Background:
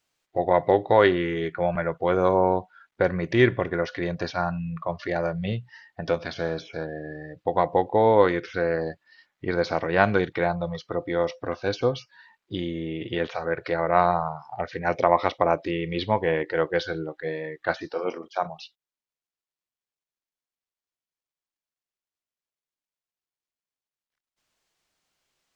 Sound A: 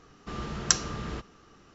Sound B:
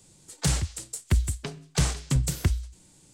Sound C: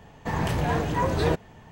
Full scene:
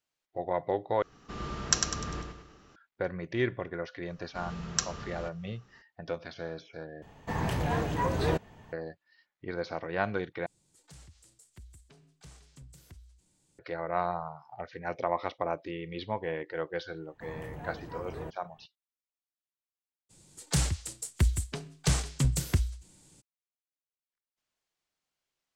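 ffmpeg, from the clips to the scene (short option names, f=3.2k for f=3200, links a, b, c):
-filter_complex "[1:a]asplit=2[a][b];[3:a]asplit=2[c][d];[2:a]asplit=2[e][f];[0:a]volume=-10.5dB[g];[a]aecho=1:1:100|200|300|400|500:0.562|0.247|0.109|0.0479|0.0211[h];[b]bandreject=f=320:w=5.3[i];[e]acompressor=threshold=-43dB:ratio=2:attack=0.1:release=55:knee=1:detection=rms[j];[d]equalizer=f=4.6k:w=0.82:g=-10.5[k];[g]asplit=4[l][m][n][o];[l]atrim=end=1.024[p];[h]atrim=end=1.74,asetpts=PTS-STARTPTS,volume=-3dB[q];[m]atrim=start=2.756:end=7.024[r];[c]atrim=end=1.71,asetpts=PTS-STARTPTS,volume=-4.5dB[s];[n]atrim=start=8.726:end=10.464[t];[j]atrim=end=3.13,asetpts=PTS-STARTPTS,volume=-14.5dB[u];[o]atrim=start=13.586[v];[i]atrim=end=1.74,asetpts=PTS-STARTPTS,volume=-6.5dB,afade=t=in:d=0.004:c=hsin,afade=t=out:st=1.736:d=0.004:c=hsin,adelay=4080[w];[k]atrim=end=1.71,asetpts=PTS-STARTPTS,volume=-17dB,afade=t=in:d=0.004:c=hsin,afade=t=out:st=1.706:d=0.004:c=hsin,adelay=16950[x];[f]atrim=end=3.13,asetpts=PTS-STARTPTS,volume=-2.5dB,afade=t=in:d=0.02,afade=t=out:st=3.11:d=0.02,adelay=20090[y];[p][q]acrossfade=d=0.004:c1=hsin:c2=hsin[z];[z][r]acrossfade=d=0.004:c1=hsin:c2=hsin[aa];[aa][s]acrossfade=d=0.004:c1=hsin:c2=hsin[ab];[ab][t]acrossfade=d=0.004:c1=hsin:c2=hsin[ac];[ac][u]acrossfade=d=0.004:c1=hsin:c2=hsin[ad];[ad][v]acrossfade=d=0.004:c1=hsin:c2=hsin[ae];[ae][w][x][y]amix=inputs=4:normalize=0"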